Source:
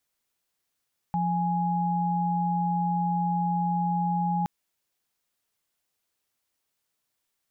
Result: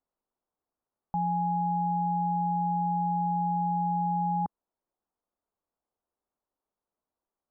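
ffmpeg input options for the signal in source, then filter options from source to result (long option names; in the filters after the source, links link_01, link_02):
-f lavfi -i "aevalsrc='0.0501*(sin(2*PI*174.61*t)+sin(2*PI*830.61*t))':duration=3.32:sample_rate=44100"
-af "lowpass=frequency=1100:width=0.5412,lowpass=frequency=1100:width=1.3066,equalizer=frequency=120:width=1.8:gain=-10"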